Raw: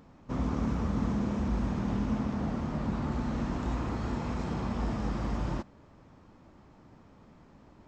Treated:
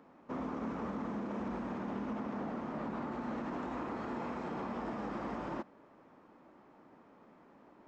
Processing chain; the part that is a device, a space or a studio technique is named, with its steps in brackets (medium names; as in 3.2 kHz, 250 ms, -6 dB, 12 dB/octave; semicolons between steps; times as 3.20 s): DJ mixer with the lows and highs turned down (three-band isolator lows -23 dB, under 220 Hz, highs -12 dB, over 2.6 kHz; peak limiter -30.5 dBFS, peak gain reduction 6 dB)